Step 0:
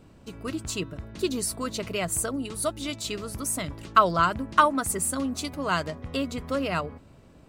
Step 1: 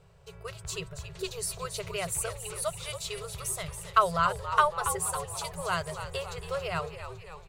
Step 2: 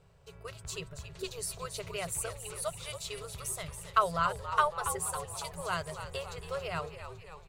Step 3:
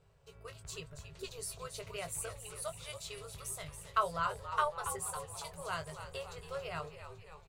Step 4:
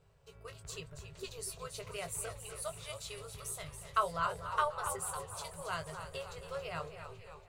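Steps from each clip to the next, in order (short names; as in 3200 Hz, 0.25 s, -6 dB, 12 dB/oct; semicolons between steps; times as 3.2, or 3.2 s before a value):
frequency-shifting echo 0.278 s, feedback 62%, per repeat -82 Hz, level -10 dB; FFT band-reject 180–370 Hz; gain -4 dB
AM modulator 140 Hz, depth 15%; gain -2.5 dB
doubler 20 ms -8 dB; gain -5.5 dB
echo with dull and thin repeats by turns 0.245 s, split 2000 Hz, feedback 50%, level -11 dB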